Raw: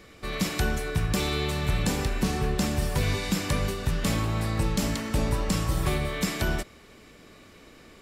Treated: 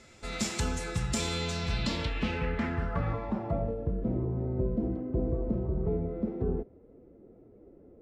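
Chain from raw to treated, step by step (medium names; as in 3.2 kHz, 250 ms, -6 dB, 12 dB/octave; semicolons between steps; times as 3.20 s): formant-preserving pitch shift +2.5 st; low-pass sweep 7.5 kHz -> 430 Hz, 1.36–3.99 s; trim -5 dB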